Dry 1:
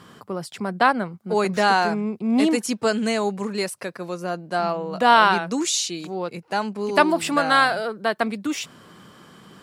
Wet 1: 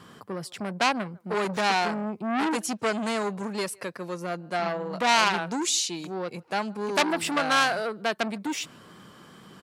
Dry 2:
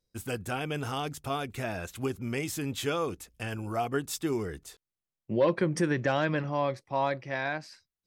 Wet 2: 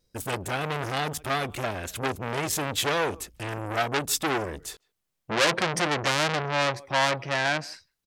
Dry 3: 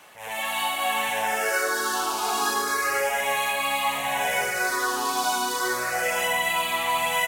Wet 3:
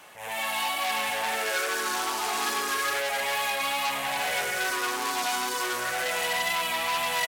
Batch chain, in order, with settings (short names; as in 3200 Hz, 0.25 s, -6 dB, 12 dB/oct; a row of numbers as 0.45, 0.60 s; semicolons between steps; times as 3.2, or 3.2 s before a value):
wow and flutter 19 cents; speakerphone echo 0.15 s, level -28 dB; core saturation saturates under 4000 Hz; match loudness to -27 LUFS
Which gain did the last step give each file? -2.0, +10.0, +0.5 dB